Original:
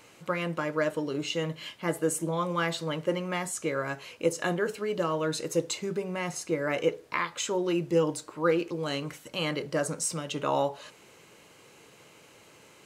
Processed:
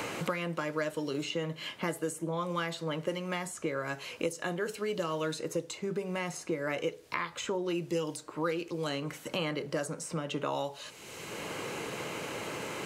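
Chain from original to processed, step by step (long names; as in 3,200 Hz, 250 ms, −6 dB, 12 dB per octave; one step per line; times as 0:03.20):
multiband upward and downward compressor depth 100%
level −5 dB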